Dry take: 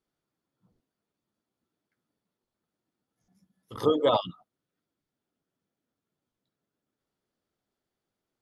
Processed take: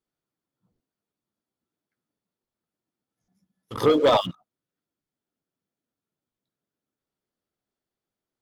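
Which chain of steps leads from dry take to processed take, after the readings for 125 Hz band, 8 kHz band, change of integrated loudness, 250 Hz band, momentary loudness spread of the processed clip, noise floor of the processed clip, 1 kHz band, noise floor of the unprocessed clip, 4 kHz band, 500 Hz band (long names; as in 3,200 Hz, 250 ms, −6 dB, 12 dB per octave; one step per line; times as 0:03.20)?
+5.5 dB, can't be measured, +5.0 dB, +5.0 dB, 18 LU, below −85 dBFS, +5.0 dB, below −85 dBFS, +5.5 dB, +5.0 dB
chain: leveller curve on the samples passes 2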